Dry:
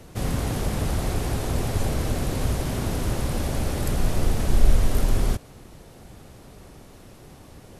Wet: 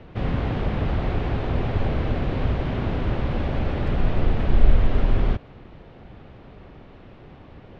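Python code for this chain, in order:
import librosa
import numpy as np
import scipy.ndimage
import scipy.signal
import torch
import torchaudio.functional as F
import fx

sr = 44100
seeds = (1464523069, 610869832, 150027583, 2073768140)

y = scipy.signal.sosfilt(scipy.signal.butter(4, 3200.0, 'lowpass', fs=sr, output='sos'), x)
y = y * 10.0 ** (1.5 / 20.0)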